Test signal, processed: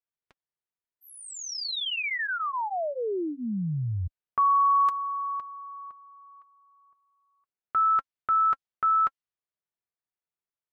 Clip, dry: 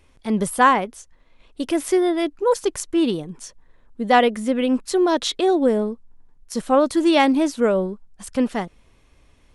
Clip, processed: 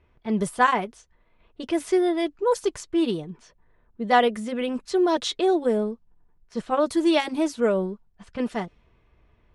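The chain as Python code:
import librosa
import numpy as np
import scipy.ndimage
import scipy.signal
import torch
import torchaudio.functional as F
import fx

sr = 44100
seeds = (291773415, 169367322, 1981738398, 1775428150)

y = fx.env_lowpass(x, sr, base_hz=2100.0, full_db=-15.5)
y = fx.notch_comb(y, sr, f0_hz=270.0)
y = y * 10.0 ** (-2.5 / 20.0)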